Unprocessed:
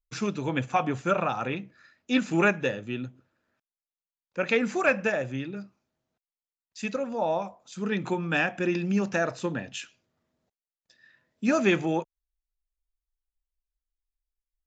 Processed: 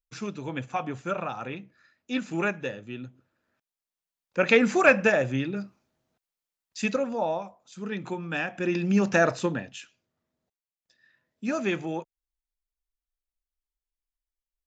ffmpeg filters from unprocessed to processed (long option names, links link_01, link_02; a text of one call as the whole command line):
ffmpeg -i in.wav -af "volume=15.5dB,afade=type=in:start_time=2.98:duration=1.5:silence=0.316228,afade=type=out:start_time=6.83:duration=0.6:silence=0.334965,afade=type=in:start_time=8.47:duration=0.81:silence=0.298538,afade=type=out:start_time=9.28:duration=0.46:silence=0.281838" out.wav